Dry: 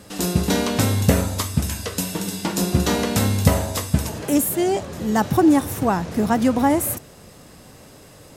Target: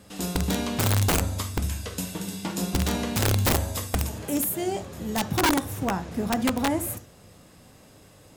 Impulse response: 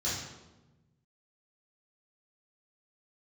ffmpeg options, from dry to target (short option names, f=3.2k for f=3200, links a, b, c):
-filter_complex "[0:a]asettb=1/sr,asplit=3[a][b][c];[a]atrim=end=3.554[d];[b]atrim=start=3.55:end=5.23,asetpts=PTS-STARTPTS,afade=t=in:d=0.004:c=qsin,afade=t=out:st=1.676:d=0.004:c=qsin,highshelf=f=11k:g=7.5[e];[c]atrim=start=5.226[f];[d][e]acrossfade=d=0.004:c1=hsin:c2=qsin[g];[g][f]acrossfade=d=0.004:c1=qsin:c2=hsin,asplit=2[h][i];[1:a]atrim=start_sample=2205,atrim=end_sample=3528[j];[i][j]afir=irnorm=-1:irlink=0,volume=-15.5dB[k];[h][k]amix=inputs=2:normalize=0,aeval=exprs='(mod(2.82*val(0)+1,2)-1)/2.82':c=same,volume=-7dB"